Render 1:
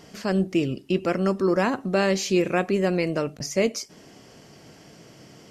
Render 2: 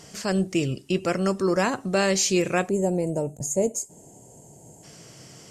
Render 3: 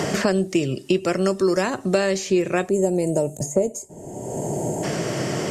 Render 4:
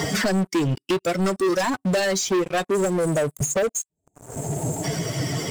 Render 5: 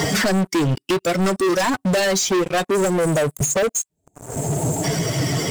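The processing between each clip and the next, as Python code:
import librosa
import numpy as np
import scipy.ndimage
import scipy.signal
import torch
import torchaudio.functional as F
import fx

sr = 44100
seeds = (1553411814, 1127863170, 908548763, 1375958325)

y1 = fx.spec_box(x, sr, start_s=2.69, length_s=2.15, low_hz=1000.0, high_hz=6300.0, gain_db=-20)
y1 = fx.graphic_eq(y1, sr, hz=(125, 250, 8000), db=(4, -4, 12))
y2 = fx.small_body(y1, sr, hz=(370.0, 600.0, 1800.0, 3700.0), ring_ms=45, db=6)
y2 = fx.band_squash(y2, sr, depth_pct=100)
y3 = fx.bin_expand(y2, sr, power=2.0)
y3 = fx.leveller(y3, sr, passes=5)
y3 = y3 * librosa.db_to_amplitude(-8.0)
y4 = 10.0 ** (-22.5 / 20.0) * np.tanh(y3 / 10.0 ** (-22.5 / 20.0))
y4 = y4 * librosa.db_to_amplitude(7.0)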